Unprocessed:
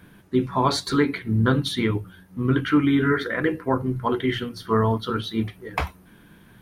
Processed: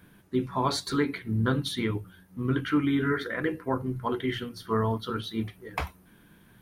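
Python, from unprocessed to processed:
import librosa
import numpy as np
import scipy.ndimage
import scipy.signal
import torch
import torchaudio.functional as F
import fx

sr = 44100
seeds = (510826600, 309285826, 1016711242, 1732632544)

y = fx.high_shelf(x, sr, hz=7600.0, db=5.0)
y = y * librosa.db_to_amplitude(-6.0)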